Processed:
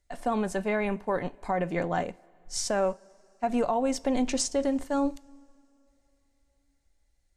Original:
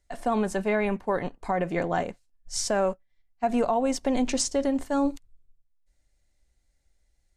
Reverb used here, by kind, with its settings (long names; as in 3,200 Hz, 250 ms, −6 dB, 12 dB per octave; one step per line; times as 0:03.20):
coupled-rooms reverb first 0.31 s, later 3.4 s, from −20 dB, DRR 16.5 dB
level −2 dB